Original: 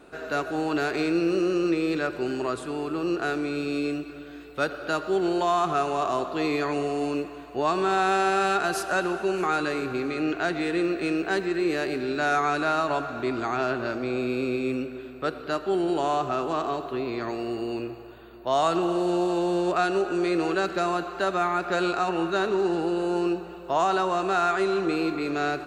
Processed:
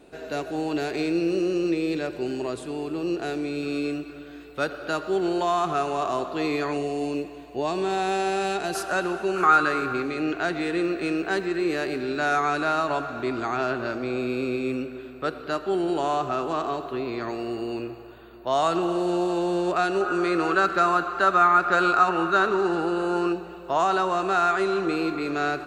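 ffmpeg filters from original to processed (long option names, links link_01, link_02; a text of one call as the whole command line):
ffmpeg -i in.wav -af "asetnsamples=nb_out_samples=441:pad=0,asendcmd='3.63 equalizer g -1;6.77 equalizer g -11;8.75 equalizer g -0.5;9.36 equalizer g 11.5;10.02 equalizer g 1;20.01 equalizer g 11;23.32 equalizer g 3',equalizer=frequency=1300:width_type=o:width=0.67:gain=-10" out.wav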